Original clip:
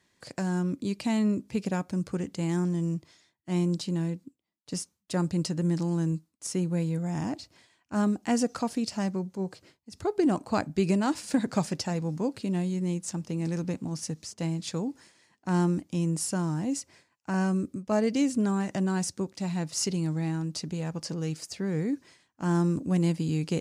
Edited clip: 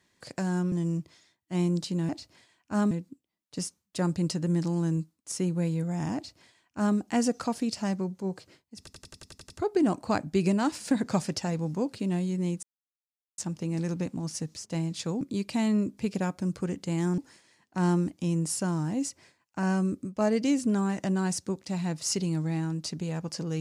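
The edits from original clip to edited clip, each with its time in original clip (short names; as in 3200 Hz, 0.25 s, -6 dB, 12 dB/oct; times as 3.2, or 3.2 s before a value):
0.72–2.69 move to 14.89
7.3–8.12 copy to 4.06
9.93 stutter 0.09 s, 9 plays
13.06 insert silence 0.75 s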